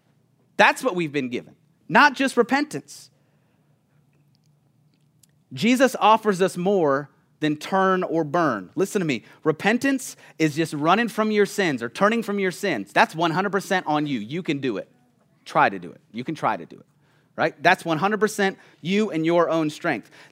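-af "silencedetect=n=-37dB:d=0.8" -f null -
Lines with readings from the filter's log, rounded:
silence_start: 3.04
silence_end: 5.23 | silence_duration: 2.20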